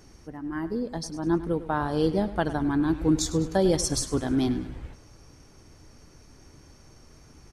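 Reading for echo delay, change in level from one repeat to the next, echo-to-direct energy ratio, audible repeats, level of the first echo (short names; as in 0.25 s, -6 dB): 0.102 s, -7.0 dB, -14.0 dB, 3, -15.0 dB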